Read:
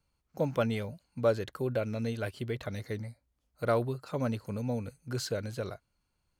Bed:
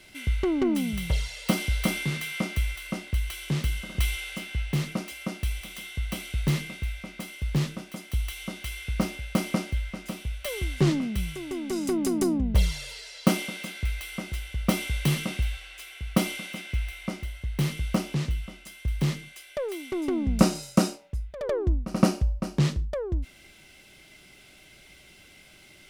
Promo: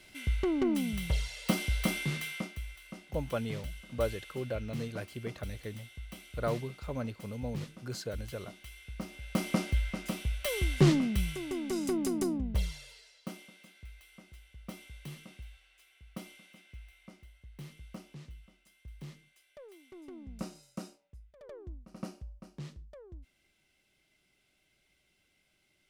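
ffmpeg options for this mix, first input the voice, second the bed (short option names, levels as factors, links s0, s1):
-filter_complex "[0:a]adelay=2750,volume=0.562[s0];[1:a]volume=2.82,afade=t=out:st=2.26:d=0.27:silence=0.334965,afade=t=in:st=9.07:d=0.68:silence=0.211349,afade=t=out:st=10.96:d=2.27:silence=0.1[s1];[s0][s1]amix=inputs=2:normalize=0"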